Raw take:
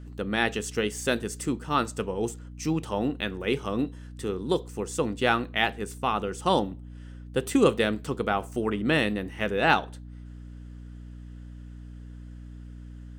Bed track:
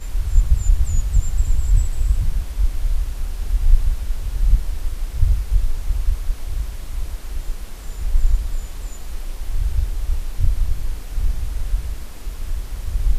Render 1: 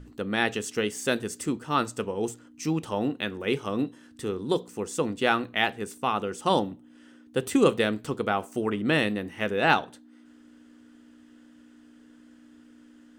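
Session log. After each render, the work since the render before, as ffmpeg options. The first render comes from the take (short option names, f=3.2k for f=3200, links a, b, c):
-af "bandreject=f=60:t=h:w=6,bandreject=f=120:t=h:w=6,bandreject=f=180:t=h:w=6"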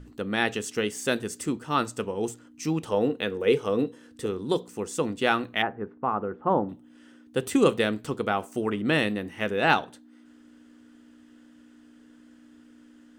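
-filter_complex "[0:a]asettb=1/sr,asplit=3[a][b][c];[a]atrim=end=2.874[d];[b]atrim=start=2.87:end=4.26,asetpts=PTS-STARTPTS,afade=t=in:d=0.004:c=qsin,afade=t=out:st=1.386:d=0.004:c=qsin,equalizer=f=470:t=o:w=0.26:g=13[e];[c]atrim=start=4.256[f];[d][e]acrossfade=d=0.004:c1=hsin:c2=qsin[g];[g][f]acrossfade=d=0.004:c1=qsin:c2=hsin,asettb=1/sr,asplit=3[h][i][j];[h]atrim=end=5.624[k];[i]atrim=start=5.62:end=6.69,asetpts=PTS-STARTPTS,afade=t=in:d=0.004:c=qsin,afade=t=out:st=1.066:d=0.004:c=qsin,lowpass=f=1.5k:w=0.5412,lowpass=f=1.5k:w=1.3066[l];[j]atrim=start=6.686[m];[k][l]acrossfade=d=0.004:c1=hsin:c2=qsin[n];[n][m]acrossfade=d=0.004:c1=qsin:c2=hsin"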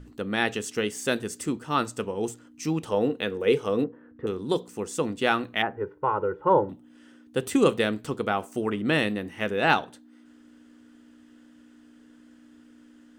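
-filter_complex "[0:a]asettb=1/sr,asplit=3[a][b][c];[a]atrim=end=3.844[d];[b]atrim=start=3.84:end=4.27,asetpts=PTS-STARTPTS,afade=t=in:d=0.004:c=qsin,afade=t=out:st=0.426:d=0.004:c=qsin,lowpass=f=1.7k:w=0.5412,lowpass=f=1.7k:w=1.3066[e];[c]atrim=start=4.266[f];[d][e]acrossfade=d=0.004:c1=hsin:c2=qsin[g];[g][f]acrossfade=d=0.004:c1=qsin:c2=hsin,asettb=1/sr,asplit=3[h][i][j];[h]atrim=end=5.774[k];[i]atrim=start=5.77:end=6.7,asetpts=PTS-STARTPTS,afade=t=in:d=0.004:c=qsin,afade=t=out:st=0.926:d=0.004:c=qsin,aecho=1:1:2.1:1,atrim=end_sample=41013[l];[j]atrim=start=6.696[m];[k][l]acrossfade=d=0.004:c1=hsin:c2=qsin[n];[n][m]acrossfade=d=0.004:c1=qsin:c2=hsin"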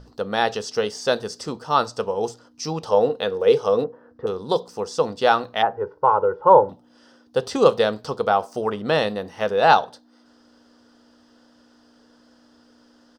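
-filter_complex "[0:a]acrossover=split=7600[a][b];[b]acompressor=threshold=-51dB:ratio=4:attack=1:release=60[c];[a][c]amix=inputs=2:normalize=0,firequalizer=gain_entry='entry(180,0);entry(310,-6);entry(470,8);entry(840,10);entry(2200,-5);entry(5000,15);entry(7100,-2)':delay=0.05:min_phase=1"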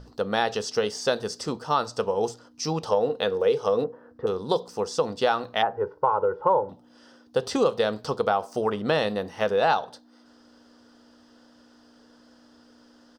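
-af "acompressor=threshold=-19dB:ratio=4"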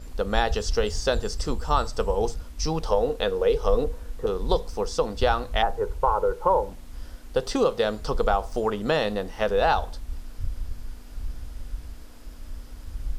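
-filter_complex "[1:a]volume=-12.5dB[a];[0:a][a]amix=inputs=2:normalize=0"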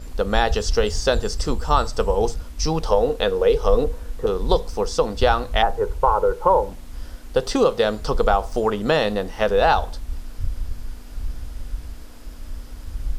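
-af "volume=4.5dB,alimiter=limit=-3dB:level=0:latency=1"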